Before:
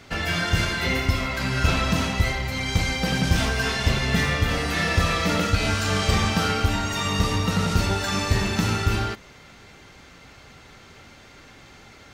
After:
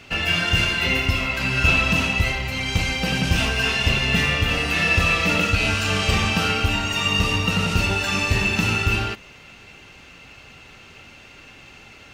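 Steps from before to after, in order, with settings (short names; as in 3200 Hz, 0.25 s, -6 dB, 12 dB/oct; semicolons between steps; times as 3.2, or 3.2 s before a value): bell 2700 Hz +14.5 dB 0.23 oct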